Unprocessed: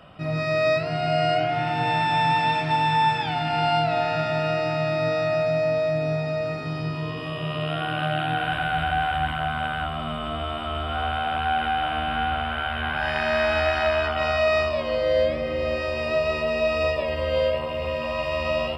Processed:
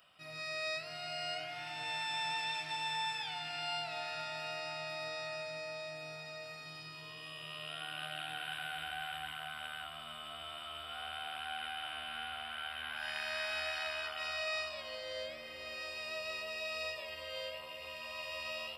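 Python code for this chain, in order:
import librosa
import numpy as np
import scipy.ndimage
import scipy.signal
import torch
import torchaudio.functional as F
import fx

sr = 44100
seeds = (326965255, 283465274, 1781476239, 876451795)

y = F.preemphasis(torch.from_numpy(x), 0.97).numpy()
y = fx.echo_wet_lowpass(y, sr, ms=494, feedback_pct=65, hz=1100.0, wet_db=-12.5)
y = y * librosa.db_to_amplitude(-1.5)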